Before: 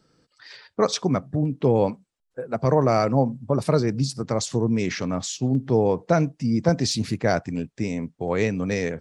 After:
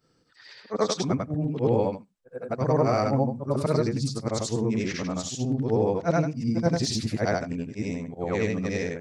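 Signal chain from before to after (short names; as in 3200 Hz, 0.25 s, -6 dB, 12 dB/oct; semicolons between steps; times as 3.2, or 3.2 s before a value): short-time reversal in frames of 0.207 s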